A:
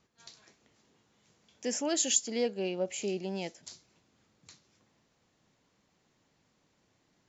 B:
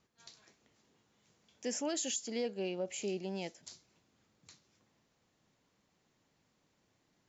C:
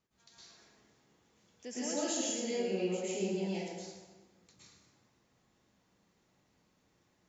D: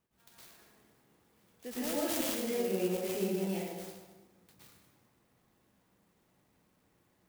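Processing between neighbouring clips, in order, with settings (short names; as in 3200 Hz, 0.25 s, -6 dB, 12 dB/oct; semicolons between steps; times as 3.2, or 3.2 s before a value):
limiter -23.5 dBFS, peak gain reduction 10 dB; gain -3.5 dB
plate-style reverb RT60 1.4 s, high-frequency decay 0.65×, pre-delay 0.1 s, DRR -10 dB; gain -8 dB
clock jitter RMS 0.054 ms; gain +1.5 dB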